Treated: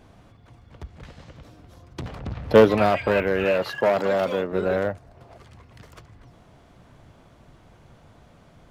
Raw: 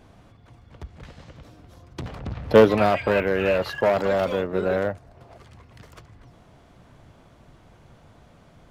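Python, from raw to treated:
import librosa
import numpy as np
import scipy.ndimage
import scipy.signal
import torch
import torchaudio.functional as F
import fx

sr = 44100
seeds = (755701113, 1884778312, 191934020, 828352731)

y = fx.highpass(x, sr, hz=130.0, slope=12, at=(3.44, 4.52))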